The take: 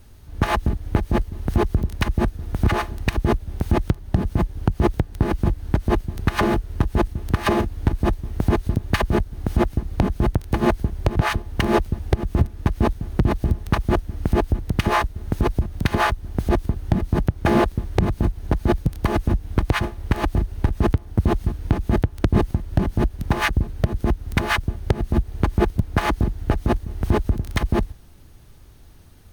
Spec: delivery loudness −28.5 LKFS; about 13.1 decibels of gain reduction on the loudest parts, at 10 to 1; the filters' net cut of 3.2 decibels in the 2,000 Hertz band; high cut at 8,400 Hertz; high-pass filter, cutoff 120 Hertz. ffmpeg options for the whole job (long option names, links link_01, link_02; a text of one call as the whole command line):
ffmpeg -i in.wav -af "highpass=120,lowpass=8400,equalizer=frequency=2000:width_type=o:gain=-4,acompressor=threshold=-30dB:ratio=10,volume=8.5dB" out.wav